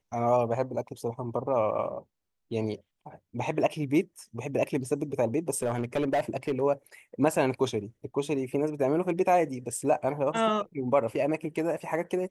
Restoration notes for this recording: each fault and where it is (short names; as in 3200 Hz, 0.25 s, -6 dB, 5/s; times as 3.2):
5.57–6.62 clipped -22 dBFS